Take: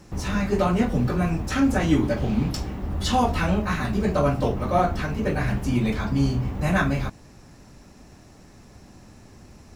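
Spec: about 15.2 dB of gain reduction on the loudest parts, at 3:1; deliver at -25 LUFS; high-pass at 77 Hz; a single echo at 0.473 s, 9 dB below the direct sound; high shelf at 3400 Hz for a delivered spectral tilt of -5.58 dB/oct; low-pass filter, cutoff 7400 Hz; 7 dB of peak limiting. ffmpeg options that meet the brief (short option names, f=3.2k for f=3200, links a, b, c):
-af "highpass=77,lowpass=7.4k,highshelf=f=3.4k:g=-7.5,acompressor=threshold=-37dB:ratio=3,alimiter=level_in=5dB:limit=-24dB:level=0:latency=1,volume=-5dB,aecho=1:1:473:0.355,volume=13dB"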